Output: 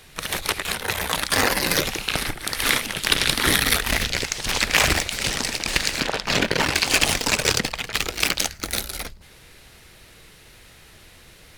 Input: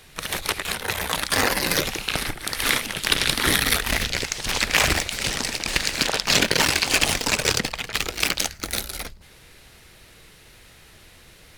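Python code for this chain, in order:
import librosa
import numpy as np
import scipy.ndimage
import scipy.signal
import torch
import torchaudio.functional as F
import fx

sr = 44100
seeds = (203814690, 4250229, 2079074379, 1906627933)

y = fx.high_shelf(x, sr, hz=3900.0, db=-11.0, at=(6.0, 6.75))
y = y * librosa.db_to_amplitude(1.0)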